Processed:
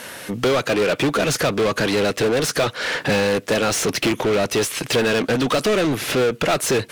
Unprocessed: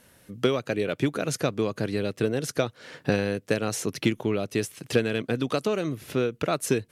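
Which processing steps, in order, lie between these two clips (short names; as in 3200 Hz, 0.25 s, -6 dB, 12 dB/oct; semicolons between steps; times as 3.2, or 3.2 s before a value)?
hard clip -22 dBFS, distortion -9 dB; overdrive pedal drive 24 dB, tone 5000 Hz, clips at -22 dBFS; gain +8.5 dB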